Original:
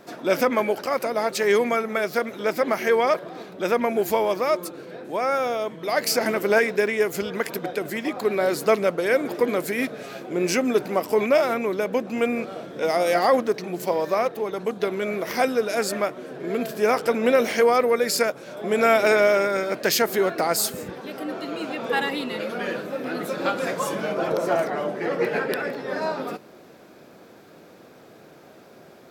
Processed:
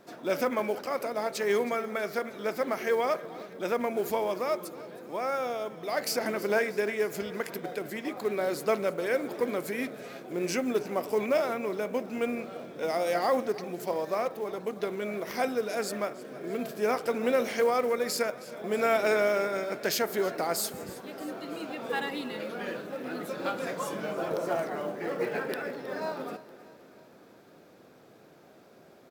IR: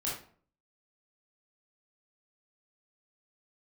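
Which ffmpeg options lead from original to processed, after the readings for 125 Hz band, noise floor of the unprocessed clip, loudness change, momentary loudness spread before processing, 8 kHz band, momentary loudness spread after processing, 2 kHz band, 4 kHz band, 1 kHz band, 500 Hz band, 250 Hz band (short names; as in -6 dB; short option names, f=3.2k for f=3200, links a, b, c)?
-7.0 dB, -49 dBFS, -7.5 dB, 10 LU, -7.5 dB, 10 LU, -8.0 dB, -8.0 dB, -7.5 dB, -7.0 dB, -7.0 dB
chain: -filter_complex "[0:a]aecho=1:1:318|636|954|1272|1590:0.119|0.0701|0.0414|0.0244|0.0144,asplit=2[a][b];[1:a]atrim=start_sample=2205,lowpass=f=2.5k:w=0.5412,lowpass=f=2.5k:w=1.3066[c];[b][c]afir=irnorm=-1:irlink=0,volume=-18dB[d];[a][d]amix=inputs=2:normalize=0,acrusher=bits=7:mode=log:mix=0:aa=0.000001,volume=-8dB"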